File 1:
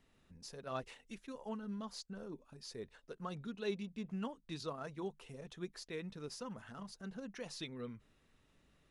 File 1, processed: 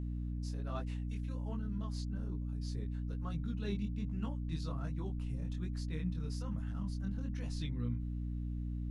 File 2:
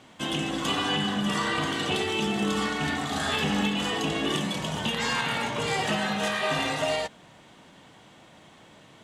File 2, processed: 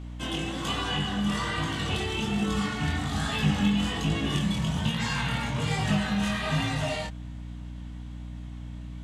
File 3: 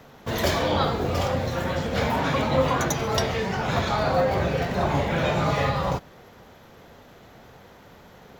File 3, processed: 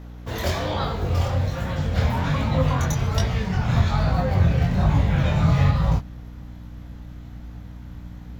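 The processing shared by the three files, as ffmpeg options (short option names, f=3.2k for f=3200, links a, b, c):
-af "asubboost=boost=8.5:cutoff=140,flanger=delay=18:depth=6.8:speed=1.2,aeval=exprs='val(0)+0.0141*(sin(2*PI*60*n/s)+sin(2*PI*2*60*n/s)/2+sin(2*PI*3*60*n/s)/3+sin(2*PI*4*60*n/s)/4+sin(2*PI*5*60*n/s)/5)':c=same"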